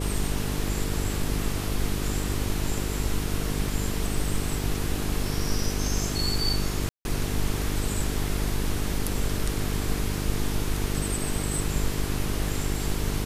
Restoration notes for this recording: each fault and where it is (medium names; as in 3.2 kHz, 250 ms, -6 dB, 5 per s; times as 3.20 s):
buzz 50 Hz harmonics 9 -30 dBFS
6.89–7.05 s: dropout 161 ms